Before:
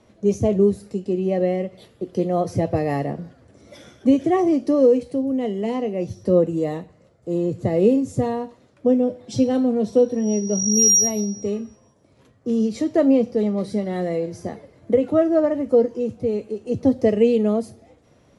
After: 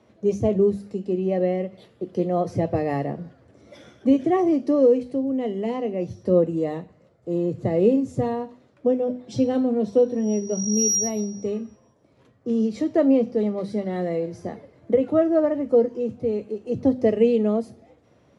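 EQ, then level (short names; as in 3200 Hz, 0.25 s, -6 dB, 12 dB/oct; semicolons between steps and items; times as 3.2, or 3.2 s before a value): HPF 69 Hz; high shelf 6300 Hz -11.5 dB; notches 50/100/150/200/250 Hz; -1.5 dB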